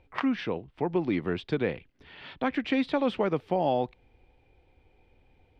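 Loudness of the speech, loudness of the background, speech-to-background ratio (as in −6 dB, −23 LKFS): −29.5 LKFS, −40.0 LKFS, 10.5 dB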